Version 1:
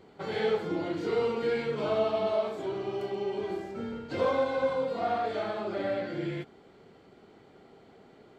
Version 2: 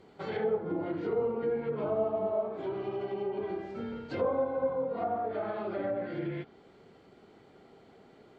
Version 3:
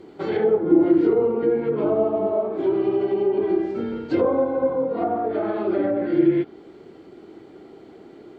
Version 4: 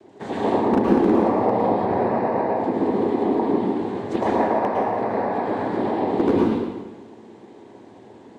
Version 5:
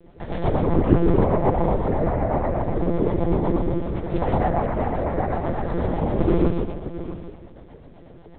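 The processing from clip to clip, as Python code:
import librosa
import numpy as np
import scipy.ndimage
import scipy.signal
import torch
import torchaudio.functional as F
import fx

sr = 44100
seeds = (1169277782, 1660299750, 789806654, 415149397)

y1 = fx.env_lowpass_down(x, sr, base_hz=910.0, full_db=-26.0)
y1 = y1 * librosa.db_to_amplitude(-1.5)
y2 = fx.peak_eq(y1, sr, hz=330.0, db=14.0, octaves=0.5)
y2 = y2 * librosa.db_to_amplitude(6.5)
y3 = fx.noise_vocoder(y2, sr, seeds[0], bands=6)
y3 = 10.0 ** (-8.0 / 20.0) * (np.abs((y3 / 10.0 ** (-8.0 / 20.0) + 3.0) % 4.0 - 2.0) - 1.0)
y3 = fx.rev_plate(y3, sr, seeds[1], rt60_s=1.2, hf_ratio=0.95, predelay_ms=95, drr_db=-3.0)
y3 = y3 * librosa.db_to_amplitude(-4.0)
y4 = fx.rotary(y3, sr, hz=8.0)
y4 = y4 + 10.0 ** (-13.5 / 20.0) * np.pad(y4, (int(663 * sr / 1000.0), 0))[:len(y4)]
y4 = fx.lpc_monotone(y4, sr, seeds[2], pitch_hz=170.0, order=8)
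y4 = y4 * librosa.db_to_amplitude(2.0)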